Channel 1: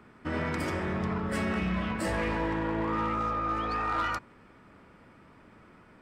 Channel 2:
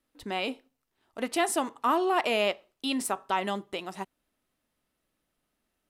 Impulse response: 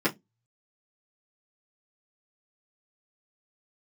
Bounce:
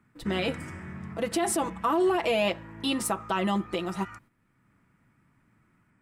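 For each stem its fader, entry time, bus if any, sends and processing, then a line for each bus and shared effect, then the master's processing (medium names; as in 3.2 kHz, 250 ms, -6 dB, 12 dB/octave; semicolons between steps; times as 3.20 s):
-6.0 dB, 0.00 s, no send, graphic EQ 125/250/500/2000/4000/8000 Hz +10/+3/-9/+6/-10/+10 dB; auto duck -10 dB, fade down 1.45 s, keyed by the second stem
0.0 dB, 0.00 s, no send, bass shelf 490 Hz +8 dB; comb 6 ms, depth 80%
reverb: none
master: gate -54 dBFS, range -8 dB; peak limiter -17.5 dBFS, peak gain reduction 11.5 dB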